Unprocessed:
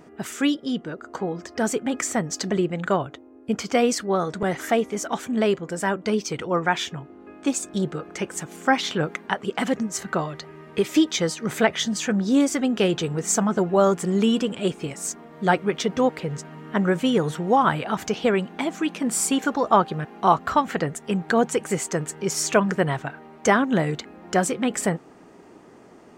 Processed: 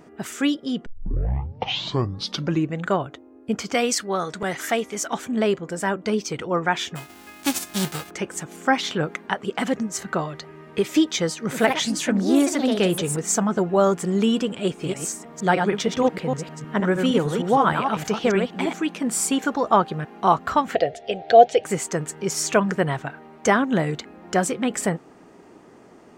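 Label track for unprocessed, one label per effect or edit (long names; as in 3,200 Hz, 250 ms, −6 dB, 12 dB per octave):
0.860000	0.860000	tape start 1.99 s
3.740000	5.130000	tilt shelving filter lows −4.5 dB, about 1,100 Hz
6.950000	8.090000	spectral envelope flattened exponent 0.3
11.390000	13.380000	delay with pitch and tempo change per echo 101 ms, each echo +3 semitones, echoes 2, each echo −6 dB
14.630000	18.810000	delay that plays each chunk backwards 155 ms, level −5 dB
20.750000	21.650000	drawn EQ curve 110 Hz 0 dB, 170 Hz −15 dB, 290 Hz −7 dB, 710 Hz +15 dB, 1,000 Hz −18 dB, 1,800 Hz −2 dB, 3,500 Hz +7 dB, 5,100 Hz +2 dB, 7,800 Hz −14 dB, 12,000 Hz −21 dB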